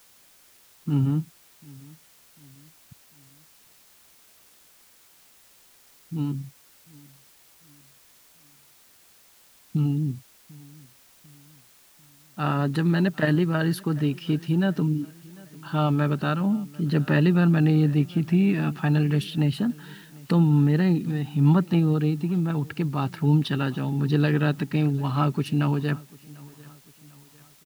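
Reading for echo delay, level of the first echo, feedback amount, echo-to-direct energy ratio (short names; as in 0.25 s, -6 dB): 0.746 s, -23.5 dB, 47%, -22.5 dB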